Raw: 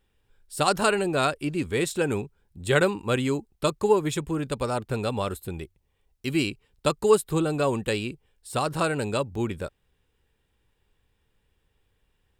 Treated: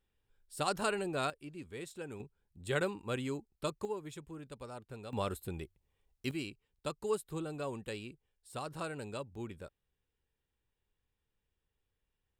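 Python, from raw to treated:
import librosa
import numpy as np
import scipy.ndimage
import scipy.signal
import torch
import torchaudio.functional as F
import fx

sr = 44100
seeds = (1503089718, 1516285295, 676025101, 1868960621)

y = fx.gain(x, sr, db=fx.steps((0.0, -11.0), (1.3, -19.0), (2.2, -12.0), (3.85, -19.0), (5.13, -7.0), (6.31, -15.0)))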